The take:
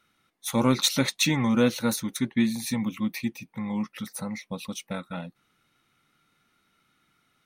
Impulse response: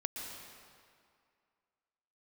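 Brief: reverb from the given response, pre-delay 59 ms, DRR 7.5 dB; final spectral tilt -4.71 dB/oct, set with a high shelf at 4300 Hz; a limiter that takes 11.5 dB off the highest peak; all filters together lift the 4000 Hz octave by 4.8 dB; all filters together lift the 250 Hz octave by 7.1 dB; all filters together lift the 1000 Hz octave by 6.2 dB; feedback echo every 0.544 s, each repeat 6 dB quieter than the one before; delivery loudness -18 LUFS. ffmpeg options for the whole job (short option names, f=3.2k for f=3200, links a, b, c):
-filter_complex "[0:a]equalizer=f=250:t=o:g=7.5,equalizer=f=1k:t=o:g=7,equalizer=f=4k:t=o:g=7.5,highshelf=f=4.3k:g=-5.5,alimiter=limit=-15dB:level=0:latency=1,aecho=1:1:544|1088|1632|2176|2720|3264:0.501|0.251|0.125|0.0626|0.0313|0.0157,asplit=2[a][b];[1:a]atrim=start_sample=2205,adelay=59[c];[b][c]afir=irnorm=-1:irlink=0,volume=-8.5dB[d];[a][d]amix=inputs=2:normalize=0,volume=6dB"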